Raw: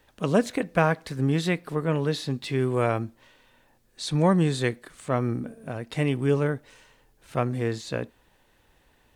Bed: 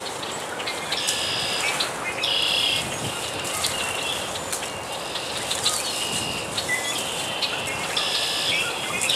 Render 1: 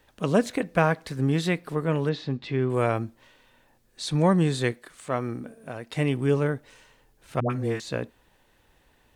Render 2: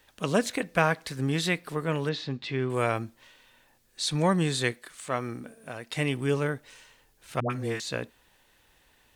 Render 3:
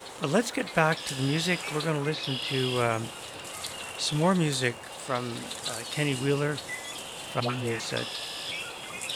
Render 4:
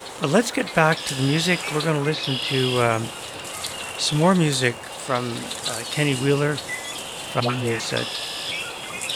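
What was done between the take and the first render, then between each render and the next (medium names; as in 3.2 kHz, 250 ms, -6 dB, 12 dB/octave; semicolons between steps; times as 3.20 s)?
2.09–2.70 s: distance through air 180 m; 4.72–5.97 s: bass shelf 290 Hz -7.5 dB; 7.40–7.80 s: phase dispersion highs, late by 102 ms, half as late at 570 Hz
tilt shelf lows -4.5 dB, about 1.3 kHz
add bed -12 dB
trim +6.5 dB; peak limiter -2 dBFS, peak gain reduction 1.5 dB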